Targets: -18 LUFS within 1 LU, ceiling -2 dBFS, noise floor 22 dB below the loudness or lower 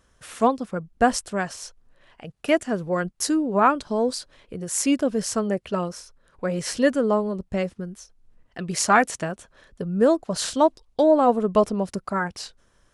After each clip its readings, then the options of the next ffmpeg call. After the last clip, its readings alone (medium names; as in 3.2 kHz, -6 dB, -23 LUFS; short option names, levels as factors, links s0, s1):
loudness -23.5 LUFS; peak level -4.5 dBFS; loudness target -18.0 LUFS
-> -af "volume=1.88,alimiter=limit=0.794:level=0:latency=1"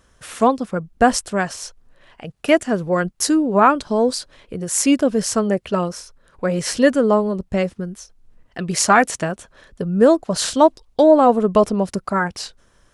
loudness -18.0 LUFS; peak level -2.0 dBFS; noise floor -58 dBFS